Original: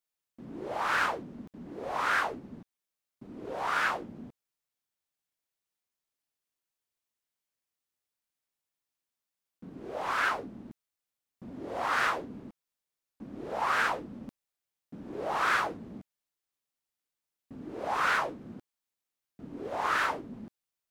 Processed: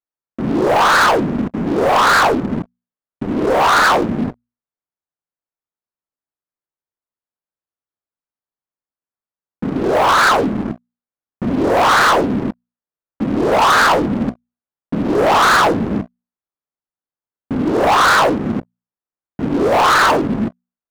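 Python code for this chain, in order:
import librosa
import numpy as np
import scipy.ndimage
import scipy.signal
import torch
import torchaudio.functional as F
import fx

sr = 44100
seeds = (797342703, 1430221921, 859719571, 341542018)

y = scipy.signal.sosfilt(scipy.signal.butter(4, 1600.0, 'lowpass', fs=sr, output='sos'), x)
y = fx.hum_notches(y, sr, base_hz=60, count=4)
y = fx.leveller(y, sr, passes=5)
y = y * librosa.db_to_amplitude(8.5)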